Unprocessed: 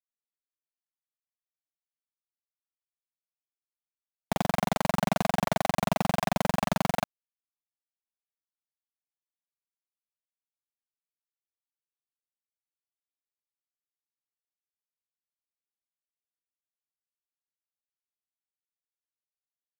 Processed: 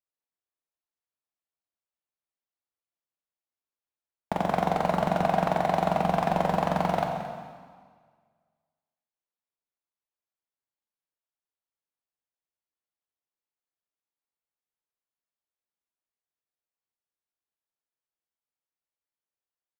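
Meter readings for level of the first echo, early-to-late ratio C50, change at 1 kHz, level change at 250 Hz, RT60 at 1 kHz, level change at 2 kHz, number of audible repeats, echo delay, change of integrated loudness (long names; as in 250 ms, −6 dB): −12.5 dB, 4.0 dB, +4.5 dB, 0.0 dB, 1.7 s, −1.0 dB, 1, 222 ms, +2.5 dB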